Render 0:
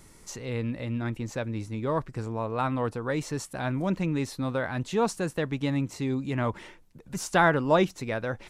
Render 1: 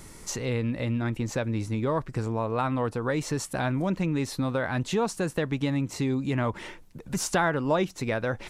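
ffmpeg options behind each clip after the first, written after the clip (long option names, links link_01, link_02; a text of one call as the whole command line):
ffmpeg -i in.wav -af "acompressor=threshold=-33dB:ratio=2.5,volume=7dB" out.wav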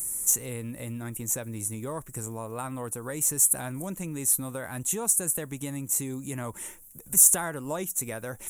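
ffmpeg -i in.wav -af "aexciter=amount=14.9:drive=10:freq=7400,volume=-8dB" out.wav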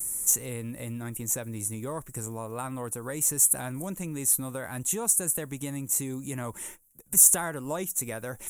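ffmpeg -i in.wav -af "agate=range=-14dB:threshold=-44dB:ratio=16:detection=peak" out.wav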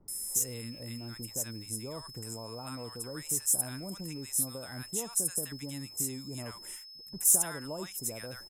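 ffmpeg -i in.wav -filter_complex "[0:a]aeval=exprs='val(0)+0.00891*sin(2*PI*5200*n/s)':channel_layout=same,bandreject=frequency=50:width_type=h:width=6,bandreject=frequency=100:width_type=h:width=6,acrossover=split=1000[link_01][link_02];[link_02]adelay=80[link_03];[link_01][link_03]amix=inputs=2:normalize=0,volume=-6dB" out.wav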